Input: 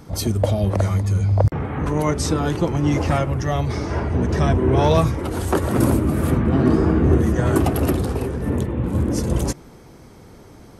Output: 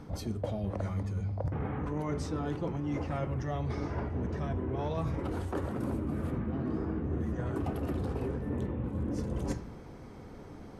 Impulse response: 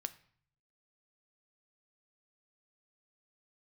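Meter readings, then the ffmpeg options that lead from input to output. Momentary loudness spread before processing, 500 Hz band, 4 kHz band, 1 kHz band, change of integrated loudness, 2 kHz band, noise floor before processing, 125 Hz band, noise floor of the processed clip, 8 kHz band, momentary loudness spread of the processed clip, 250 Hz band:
7 LU, -15.0 dB, -19.0 dB, -15.0 dB, -14.5 dB, -15.5 dB, -45 dBFS, -14.5 dB, -47 dBFS, under -20 dB, 3 LU, -14.0 dB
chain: -filter_complex "[0:a]lowpass=f=2300:p=1[s0];[1:a]atrim=start_sample=2205,asetrate=48510,aresample=44100[s1];[s0][s1]afir=irnorm=-1:irlink=0,areverse,acompressor=threshold=0.0316:ratio=10,areverse"

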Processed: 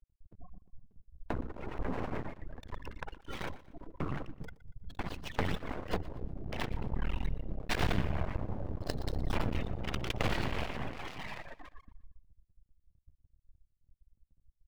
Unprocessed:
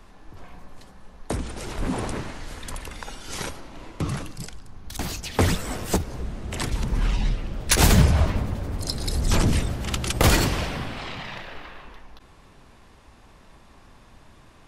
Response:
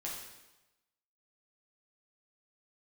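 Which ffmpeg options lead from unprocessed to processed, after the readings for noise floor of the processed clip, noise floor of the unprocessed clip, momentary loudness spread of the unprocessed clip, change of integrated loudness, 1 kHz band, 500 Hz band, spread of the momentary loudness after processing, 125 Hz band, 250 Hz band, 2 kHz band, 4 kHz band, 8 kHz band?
-77 dBFS, -52 dBFS, 18 LU, -13.0 dB, -10.0 dB, -10.0 dB, 15 LU, -13.5 dB, -11.5 dB, -10.5 dB, -14.5 dB, -25.5 dB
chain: -filter_complex "[0:a]lowpass=5400,afftfilt=real='re*gte(hypot(re,im),0.0251)':imag='im*gte(hypot(re,im),0.0251)':win_size=1024:overlap=0.75,lowshelf=f=430:g=-4.5,acrossover=split=3700[s0][s1];[s1]acrusher=samples=25:mix=1:aa=0.000001:lfo=1:lforange=15:lforate=0.52[s2];[s0][s2]amix=inputs=2:normalize=0,acompressor=threshold=0.0447:ratio=2.5,adynamicequalizer=threshold=0.00251:dfrequency=1300:dqfactor=2.4:tfrequency=1300:tqfactor=2.4:attack=5:release=100:ratio=0.375:range=2.5:mode=cutabove:tftype=bell,aeval=exprs='max(val(0),0)':c=same,asplit=2[s3][s4];[s4]aecho=0:1:119|238|357:0.126|0.0466|0.0172[s5];[s3][s5]amix=inputs=2:normalize=0"

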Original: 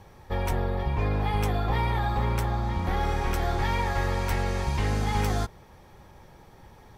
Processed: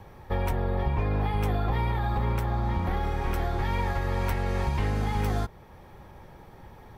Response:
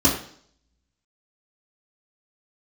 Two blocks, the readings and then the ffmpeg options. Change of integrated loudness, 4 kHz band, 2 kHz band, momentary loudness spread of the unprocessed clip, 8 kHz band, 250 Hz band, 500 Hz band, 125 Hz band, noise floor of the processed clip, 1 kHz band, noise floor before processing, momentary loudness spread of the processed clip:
-1.0 dB, -5.0 dB, -3.0 dB, 2 LU, -7.5 dB, -0.5 dB, -1.0 dB, 0.0 dB, -49 dBFS, -2.0 dB, -52 dBFS, 2 LU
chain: -filter_complex "[0:a]equalizer=f=6600:t=o:w=1.7:g=-8,acrossover=split=380|3000[s0][s1][s2];[s1]acompressor=threshold=0.0316:ratio=6[s3];[s0][s3][s2]amix=inputs=3:normalize=0,alimiter=limit=0.0944:level=0:latency=1:release=414,volume=1.41"

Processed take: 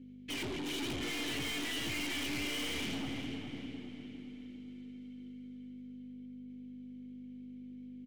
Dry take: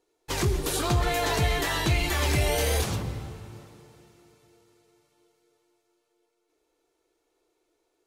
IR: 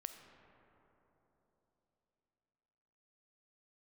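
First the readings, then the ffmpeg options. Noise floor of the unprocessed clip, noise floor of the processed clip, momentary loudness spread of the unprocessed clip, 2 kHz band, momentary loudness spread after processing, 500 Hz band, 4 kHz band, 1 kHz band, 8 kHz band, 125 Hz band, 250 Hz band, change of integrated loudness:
-76 dBFS, -49 dBFS, 13 LU, -8.0 dB, 13 LU, -15.0 dB, -5.5 dB, -17.0 dB, -11.5 dB, -19.5 dB, -3.5 dB, -13.5 dB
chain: -filter_complex "[0:a]highpass=f=40:w=0.5412,highpass=f=40:w=1.3066,equalizer=f=2900:t=o:w=0.21:g=7.5,aeval=exprs='val(0)+0.00501*(sin(2*PI*50*n/s)+sin(2*PI*2*50*n/s)/2+sin(2*PI*3*50*n/s)/3+sin(2*PI*4*50*n/s)/4+sin(2*PI*5*50*n/s)/5)':c=same,asplit=3[s0][s1][s2];[s0]bandpass=f=270:t=q:w=8,volume=1[s3];[s1]bandpass=f=2290:t=q:w=8,volume=0.501[s4];[s2]bandpass=f=3010:t=q:w=8,volume=0.355[s5];[s3][s4][s5]amix=inputs=3:normalize=0,aeval=exprs='(tanh(398*val(0)+0.25)-tanh(0.25))/398':c=same,asplit=2[s6][s7];[s7]adelay=404,lowpass=f=4700:p=1,volume=0.398,asplit=2[s8][s9];[s9]adelay=404,lowpass=f=4700:p=1,volume=0.42,asplit=2[s10][s11];[s11]adelay=404,lowpass=f=4700:p=1,volume=0.42,asplit=2[s12][s13];[s13]adelay=404,lowpass=f=4700:p=1,volume=0.42,asplit=2[s14][s15];[s15]adelay=404,lowpass=f=4700:p=1,volume=0.42[s16];[s6][s8][s10][s12][s14][s16]amix=inputs=6:normalize=0,volume=5.62"

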